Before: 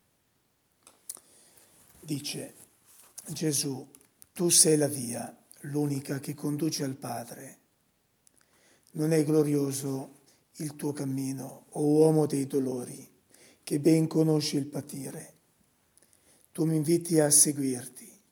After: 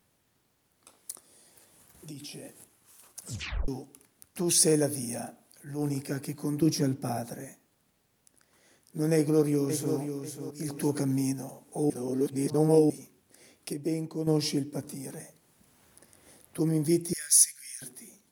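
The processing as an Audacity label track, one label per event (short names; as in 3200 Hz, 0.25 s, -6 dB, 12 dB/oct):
1.110000	2.450000	compressor, threshold -39 dBFS
3.200000	3.200000	tape stop 0.48 s
4.390000	5.940000	transient shaper attack -9 dB, sustain 0 dB
6.620000	7.450000	low shelf 440 Hz +7.5 dB
9.150000	9.960000	echo throw 0.54 s, feedback 30%, level -8 dB
10.680000	11.330000	gain +4 dB
11.900000	12.900000	reverse
13.730000	14.270000	gain -8.5 dB
14.840000	16.590000	three-band squash depth 40%
17.130000	17.820000	inverse Chebyshev high-pass stop band from 900 Hz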